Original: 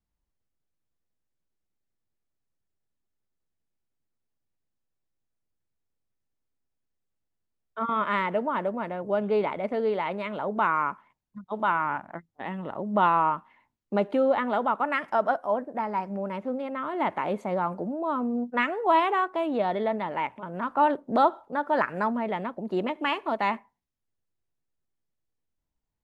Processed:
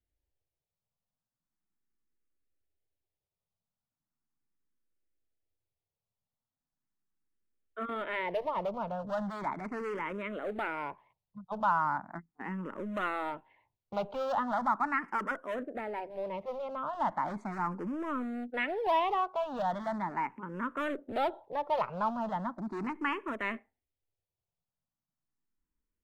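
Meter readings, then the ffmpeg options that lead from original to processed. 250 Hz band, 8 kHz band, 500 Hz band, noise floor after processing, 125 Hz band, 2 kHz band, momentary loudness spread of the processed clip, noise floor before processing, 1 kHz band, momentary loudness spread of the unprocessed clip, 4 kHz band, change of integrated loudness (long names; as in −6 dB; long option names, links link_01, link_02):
−7.5 dB, can't be measured, −8.0 dB, below −85 dBFS, −5.5 dB, −5.5 dB, 9 LU, −81 dBFS, −6.5 dB, 9 LU, −6.5 dB, −7.0 dB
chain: -filter_complex "[0:a]highshelf=frequency=2900:gain=-9.5,acrossover=split=800[link_01][link_02];[link_01]asoftclip=type=hard:threshold=-32.5dB[link_03];[link_03][link_02]amix=inputs=2:normalize=0,asplit=2[link_04][link_05];[link_05]afreqshift=0.38[link_06];[link_04][link_06]amix=inputs=2:normalize=1"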